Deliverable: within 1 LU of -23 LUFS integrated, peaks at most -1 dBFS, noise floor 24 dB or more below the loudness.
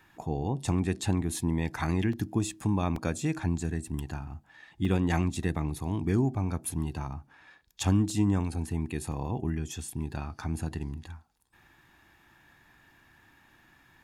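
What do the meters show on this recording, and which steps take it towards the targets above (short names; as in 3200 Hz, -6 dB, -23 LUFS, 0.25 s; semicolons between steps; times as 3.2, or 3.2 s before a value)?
dropouts 5; longest dropout 2.7 ms; loudness -31.0 LUFS; peak -11.5 dBFS; loudness target -23.0 LUFS
-> interpolate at 2.13/2.96/4.85/8.1/9.12, 2.7 ms; gain +8 dB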